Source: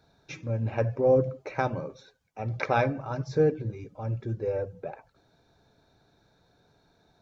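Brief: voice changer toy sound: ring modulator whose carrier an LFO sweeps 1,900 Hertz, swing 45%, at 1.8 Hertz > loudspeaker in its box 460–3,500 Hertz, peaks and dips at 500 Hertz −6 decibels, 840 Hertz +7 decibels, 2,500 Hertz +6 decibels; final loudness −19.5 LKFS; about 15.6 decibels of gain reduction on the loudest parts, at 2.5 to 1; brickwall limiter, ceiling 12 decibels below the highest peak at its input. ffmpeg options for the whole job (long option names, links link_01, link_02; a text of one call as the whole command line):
ffmpeg -i in.wav -af "acompressor=threshold=-42dB:ratio=2.5,alimiter=level_in=9dB:limit=-24dB:level=0:latency=1,volume=-9dB,aeval=exprs='val(0)*sin(2*PI*1900*n/s+1900*0.45/1.8*sin(2*PI*1.8*n/s))':channel_layout=same,highpass=460,equalizer=frequency=500:width_type=q:width=4:gain=-6,equalizer=frequency=840:width_type=q:width=4:gain=7,equalizer=frequency=2500:width_type=q:width=4:gain=6,lowpass=frequency=3500:width=0.5412,lowpass=frequency=3500:width=1.3066,volume=22dB" out.wav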